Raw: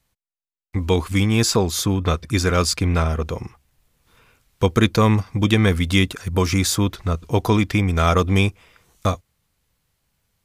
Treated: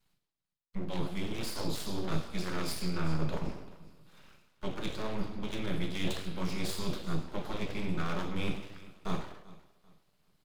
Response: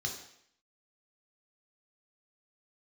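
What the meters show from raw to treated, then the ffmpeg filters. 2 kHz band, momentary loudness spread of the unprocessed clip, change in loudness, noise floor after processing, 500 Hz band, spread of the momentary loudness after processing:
−16.5 dB, 9 LU, −17.0 dB, −83 dBFS, −17.0 dB, 9 LU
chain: -filter_complex "[0:a]areverse,acompressor=threshold=-30dB:ratio=12,areverse,aecho=1:1:387|774|1161:0.141|0.0424|0.0127,aeval=exprs='0.133*(cos(1*acos(clip(val(0)/0.133,-1,1)))-cos(1*PI/2))+0.00596*(cos(7*acos(clip(val(0)/0.133,-1,1)))-cos(7*PI/2))':channel_layout=same[link_01];[1:a]atrim=start_sample=2205,afade=type=out:start_time=0.26:duration=0.01,atrim=end_sample=11907,asetrate=31311,aresample=44100[link_02];[link_01][link_02]afir=irnorm=-1:irlink=0,aeval=exprs='abs(val(0))':channel_layout=same,volume=-5.5dB"

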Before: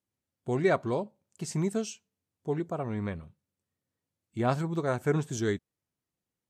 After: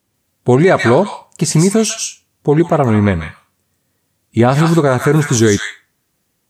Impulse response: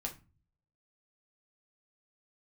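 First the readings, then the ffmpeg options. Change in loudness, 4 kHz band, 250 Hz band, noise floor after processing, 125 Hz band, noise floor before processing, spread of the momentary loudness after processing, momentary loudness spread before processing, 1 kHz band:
+17.5 dB, +21.5 dB, +18.5 dB, −67 dBFS, +18.5 dB, below −85 dBFS, 11 LU, 15 LU, +17.5 dB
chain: -filter_complex "[0:a]asplit=2[link_01][link_02];[link_02]highpass=frequency=950:width=0.5412,highpass=frequency=950:width=1.3066[link_03];[1:a]atrim=start_sample=2205,highshelf=frequency=4000:gain=10.5,adelay=143[link_04];[link_03][link_04]afir=irnorm=-1:irlink=0,volume=-6.5dB[link_05];[link_01][link_05]amix=inputs=2:normalize=0,alimiter=level_in=22dB:limit=-1dB:release=50:level=0:latency=1,volume=-1dB"

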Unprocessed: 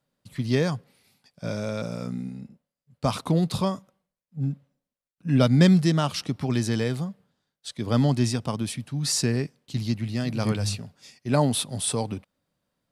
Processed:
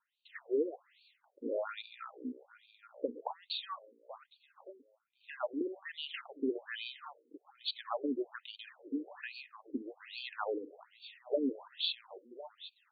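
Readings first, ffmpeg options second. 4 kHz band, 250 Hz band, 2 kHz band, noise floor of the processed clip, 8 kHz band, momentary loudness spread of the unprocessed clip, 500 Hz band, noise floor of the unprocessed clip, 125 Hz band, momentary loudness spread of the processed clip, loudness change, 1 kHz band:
−8.0 dB, −16.5 dB, −9.5 dB, −78 dBFS, below −40 dB, 17 LU, −9.0 dB, below −85 dBFS, below −40 dB, 18 LU, −14.0 dB, −11.5 dB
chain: -af "bandreject=frequency=2300:width=8.5,acompressor=threshold=-24dB:ratio=12,aecho=1:1:1054|2108|3162:0.141|0.041|0.0119,afftfilt=real='re*between(b*sr/1024,350*pow(3300/350,0.5+0.5*sin(2*PI*1.2*pts/sr))/1.41,350*pow(3300/350,0.5+0.5*sin(2*PI*1.2*pts/sr))*1.41)':imag='im*between(b*sr/1024,350*pow(3300/350,0.5+0.5*sin(2*PI*1.2*pts/sr))/1.41,350*pow(3300/350,0.5+0.5*sin(2*PI*1.2*pts/sr))*1.41)':win_size=1024:overlap=0.75,volume=3dB"

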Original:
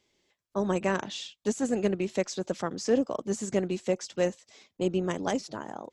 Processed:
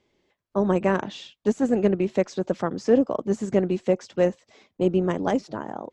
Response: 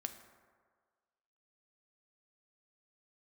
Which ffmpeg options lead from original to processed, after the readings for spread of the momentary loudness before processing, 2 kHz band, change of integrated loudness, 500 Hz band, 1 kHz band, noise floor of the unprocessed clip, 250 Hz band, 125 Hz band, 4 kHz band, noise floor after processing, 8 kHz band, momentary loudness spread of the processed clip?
6 LU, +2.0 dB, +6.0 dB, +6.0 dB, +5.0 dB, −83 dBFS, +6.5 dB, +6.5 dB, −2.5 dB, −79 dBFS, −7.0 dB, 6 LU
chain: -af "lowpass=frequency=1400:poles=1,volume=6.5dB"

